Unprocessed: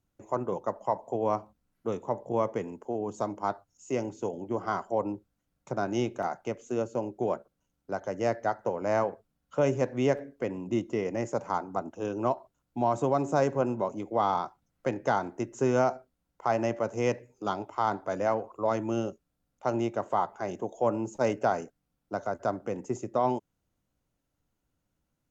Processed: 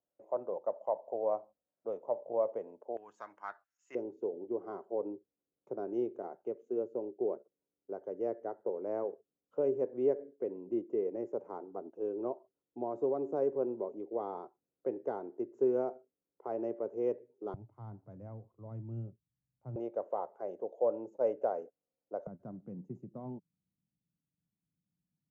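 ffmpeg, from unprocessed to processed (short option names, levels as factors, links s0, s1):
-af "asetnsamples=n=441:p=0,asendcmd='2.97 bandpass f 1700;3.95 bandpass f 410;17.54 bandpass f 120;19.76 bandpass f 510;22.27 bandpass f 170',bandpass=f=580:t=q:w=3.7:csg=0"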